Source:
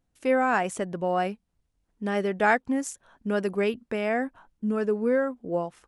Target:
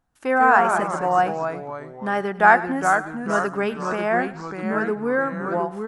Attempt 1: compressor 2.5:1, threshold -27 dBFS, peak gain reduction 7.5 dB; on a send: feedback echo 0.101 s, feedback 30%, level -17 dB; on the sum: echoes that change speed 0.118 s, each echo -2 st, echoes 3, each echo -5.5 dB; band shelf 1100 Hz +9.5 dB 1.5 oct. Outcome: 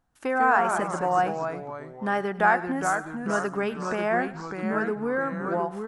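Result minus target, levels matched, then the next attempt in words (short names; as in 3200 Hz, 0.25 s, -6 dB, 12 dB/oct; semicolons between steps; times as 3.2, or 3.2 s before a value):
compressor: peak gain reduction +7.5 dB
on a send: feedback echo 0.101 s, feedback 30%, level -17 dB; on the sum: echoes that change speed 0.118 s, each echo -2 st, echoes 3, each echo -5.5 dB; band shelf 1100 Hz +9.5 dB 1.5 oct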